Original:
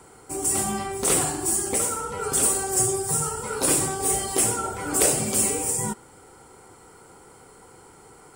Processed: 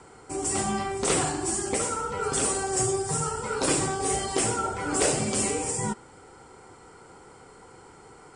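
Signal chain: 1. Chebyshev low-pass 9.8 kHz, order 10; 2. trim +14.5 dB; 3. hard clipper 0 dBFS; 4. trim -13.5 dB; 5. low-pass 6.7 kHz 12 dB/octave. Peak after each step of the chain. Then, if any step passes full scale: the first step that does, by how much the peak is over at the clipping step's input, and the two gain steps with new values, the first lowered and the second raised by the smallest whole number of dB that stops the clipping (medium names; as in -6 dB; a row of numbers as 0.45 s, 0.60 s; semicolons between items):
-5.5 dBFS, +9.0 dBFS, 0.0 dBFS, -13.5 dBFS, -13.0 dBFS; step 2, 9.0 dB; step 2 +5.5 dB, step 4 -4.5 dB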